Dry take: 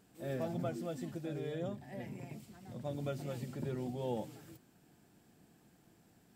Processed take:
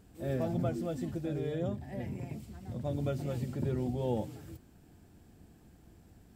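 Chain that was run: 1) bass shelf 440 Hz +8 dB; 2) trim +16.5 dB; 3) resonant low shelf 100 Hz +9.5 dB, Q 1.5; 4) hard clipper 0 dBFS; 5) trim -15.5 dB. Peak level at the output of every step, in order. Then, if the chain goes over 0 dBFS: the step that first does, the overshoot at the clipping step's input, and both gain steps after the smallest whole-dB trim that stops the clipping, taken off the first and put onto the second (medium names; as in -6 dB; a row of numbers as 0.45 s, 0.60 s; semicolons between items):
-20.5 dBFS, -4.0 dBFS, -4.5 dBFS, -4.5 dBFS, -20.0 dBFS; nothing clips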